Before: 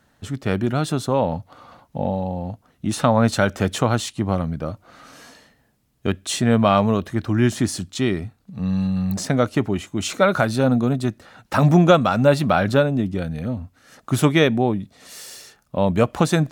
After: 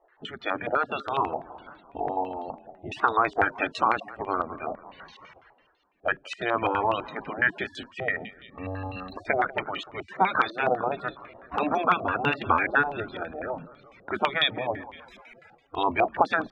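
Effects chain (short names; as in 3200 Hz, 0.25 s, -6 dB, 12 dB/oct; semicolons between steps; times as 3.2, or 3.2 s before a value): spectral gate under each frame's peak -10 dB weak; compressor, threshold -22 dBFS, peak gain reduction 6.5 dB; frequency-shifting echo 0.19 s, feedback 59%, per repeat -30 Hz, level -17.5 dB; loudest bins only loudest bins 64; stepped low-pass 12 Hz 700–3600 Hz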